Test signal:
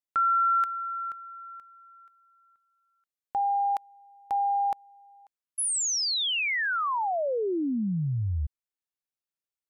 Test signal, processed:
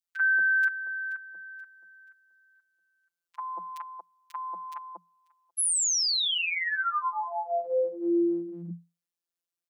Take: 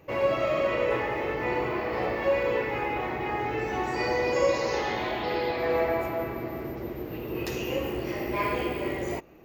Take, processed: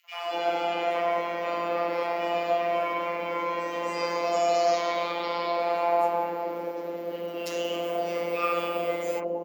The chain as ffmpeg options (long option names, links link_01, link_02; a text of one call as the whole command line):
ffmpeg -i in.wav -filter_complex "[0:a]acrossover=split=660|2000[link_01][link_02][link_03];[link_02]adelay=40[link_04];[link_01]adelay=230[link_05];[link_05][link_04][link_03]amix=inputs=3:normalize=0,afftfilt=real='hypot(re,im)*cos(PI*b)':imag='0':win_size=1024:overlap=0.75,afreqshift=170,volume=5dB" out.wav